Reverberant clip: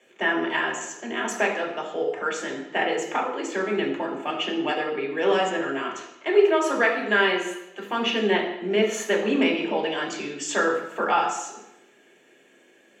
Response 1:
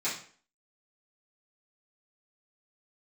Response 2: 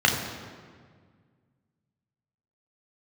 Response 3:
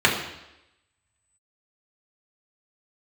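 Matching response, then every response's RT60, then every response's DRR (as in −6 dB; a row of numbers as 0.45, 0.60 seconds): 3; 0.45, 1.8, 0.90 seconds; −12.5, 0.0, −3.5 decibels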